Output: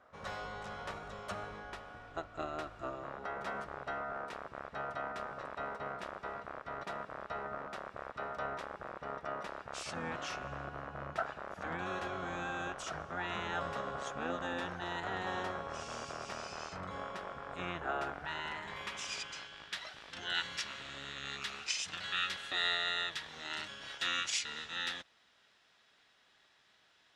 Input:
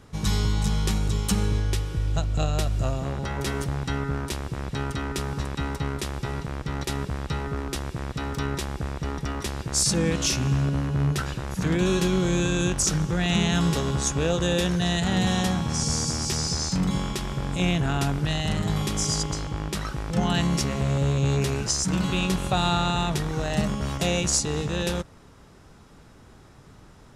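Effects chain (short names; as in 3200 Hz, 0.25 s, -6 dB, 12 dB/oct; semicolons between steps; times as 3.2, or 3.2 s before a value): band-pass sweep 1300 Hz -> 3400 Hz, 17.95–19.65; harmoniser -12 st -1 dB; gain -3 dB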